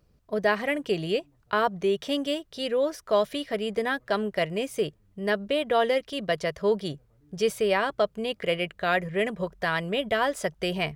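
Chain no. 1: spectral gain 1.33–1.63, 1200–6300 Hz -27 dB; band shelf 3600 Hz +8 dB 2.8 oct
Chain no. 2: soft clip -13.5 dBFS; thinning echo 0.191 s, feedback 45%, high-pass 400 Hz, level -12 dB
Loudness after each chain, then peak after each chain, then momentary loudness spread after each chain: -24.5, -28.0 LUFS; -5.0, -14.5 dBFS; 6, 5 LU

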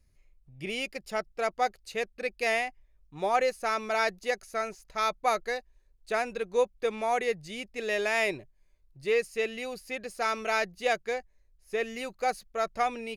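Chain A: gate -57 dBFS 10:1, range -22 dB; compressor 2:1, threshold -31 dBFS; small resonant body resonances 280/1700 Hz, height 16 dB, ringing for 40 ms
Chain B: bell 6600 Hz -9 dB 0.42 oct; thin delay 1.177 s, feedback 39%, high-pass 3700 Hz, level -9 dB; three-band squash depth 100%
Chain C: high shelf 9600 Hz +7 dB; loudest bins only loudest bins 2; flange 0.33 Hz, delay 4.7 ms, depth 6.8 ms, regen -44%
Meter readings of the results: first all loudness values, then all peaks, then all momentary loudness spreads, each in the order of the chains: -31.0, -30.0, -39.0 LUFS; -14.5, -14.0, -24.0 dBFS; 5, 9, 12 LU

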